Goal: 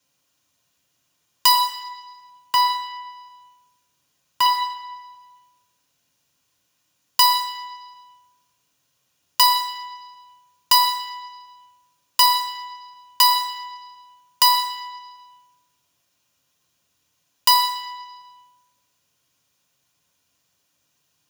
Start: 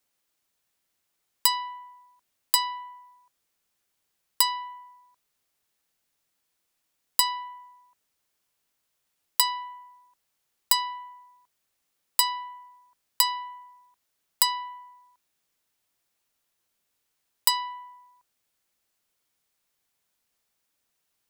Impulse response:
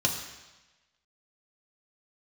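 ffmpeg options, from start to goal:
-filter_complex "[0:a]asettb=1/sr,asplit=3[s0][s1][s2];[s0]atrim=end=1.554[s3];[s1]atrim=start=1.55:end=4.46,asetpts=PTS-STARTPTS,afade=t=in:d=0.004:c=qsin,afade=t=out:st=2.906:d=0.004:c=qsin,acrossover=split=2800[s4][s5];[s5]acompressor=threshold=0.0501:ratio=4:attack=1:release=60[s6];[s4][s6]amix=inputs=2:normalize=0[s7];[s2]atrim=start=4.456[s8];[s3][s7]acrossfade=d=0.004:c1=hsin:c2=qsin[s9];[s9][s8]acrossfade=d=0.004:c1=qsin:c2=hsin[s10];[1:a]atrim=start_sample=2205[s11];[s10][s11]afir=irnorm=-1:irlink=0,volume=0.891"

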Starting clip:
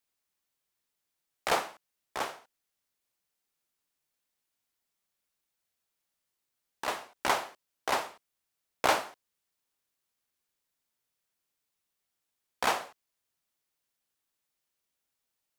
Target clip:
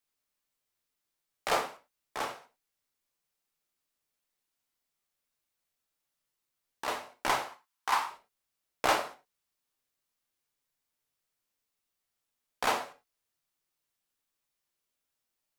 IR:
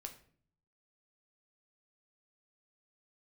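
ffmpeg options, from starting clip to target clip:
-filter_complex "[0:a]asettb=1/sr,asplit=3[s0][s1][s2];[s0]atrim=end=7.474[s3];[s1]atrim=start=7.47:end=8.11,asetpts=PTS-STARTPTS,afade=t=in:d=0.004:c=qsin,afade=t=out:st=0.636:d=0.004:c=qsin,lowshelf=f=730:t=q:w=3:g=-7.5[s4];[s2]atrim=start=8.106[s5];[s3][s4]acrossfade=d=0.004:c1=hsin:c2=qsin[s6];[s6][s5]acrossfade=d=0.004:c1=qsin:c2=hsin[s7];[1:a]atrim=start_sample=2205,afade=t=out:st=0.16:d=0.01,atrim=end_sample=7497[s8];[s7][s8]afir=irnorm=-1:irlink=0,volume=1.5"

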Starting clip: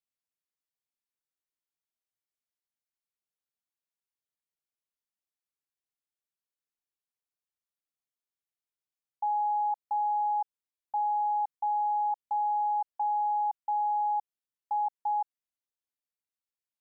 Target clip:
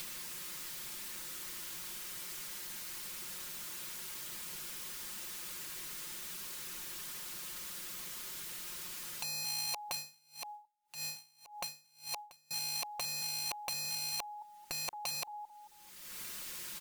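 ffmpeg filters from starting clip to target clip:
-filter_complex "[0:a]acompressor=mode=upward:threshold=0.0178:ratio=2.5,equalizer=f=680:w=3.1:g=-11,asplit=2[s0][s1];[s1]adelay=221,lowpass=f=860:p=1,volume=0.075,asplit=2[s2][s3];[s3]adelay=221,lowpass=f=860:p=1,volume=0.46,asplit=2[s4][s5];[s5]adelay=221,lowpass=f=860:p=1,volume=0.46[s6];[s0][s2][s4][s6]amix=inputs=4:normalize=0,aeval=exprs='(mod(63.1*val(0)+1,2)-1)/63.1':c=same,aecho=1:1:5.6:0.95,alimiter=level_in=7.94:limit=0.0631:level=0:latency=1:release=14,volume=0.126,asettb=1/sr,asplit=3[s7][s8][s9];[s7]atrim=end=9.944[s10];[s8]atrim=start=9.94:end=12.51,asetpts=PTS-STARTPTS,afade=t=in:d=0.004:c=qsin,afade=t=out:st=2.566:d=0.004:c=qsin,aeval=exprs='val(0)*pow(10,-32*(0.5-0.5*cos(2*PI*1.8*n/s))/20)':c=same[s11];[s9]atrim=start=12.506[s12];[s10][s11]acrossfade=d=0.004:c1=hsin:c2=qsin[s13];[s13][s12]acrossfade=d=0.004:c1=qsin:c2=hsin,volume=5.01"

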